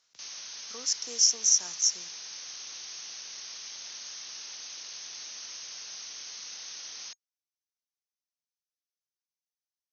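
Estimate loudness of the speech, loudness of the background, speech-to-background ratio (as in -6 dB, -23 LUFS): -24.5 LUFS, -39.5 LUFS, 15.0 dB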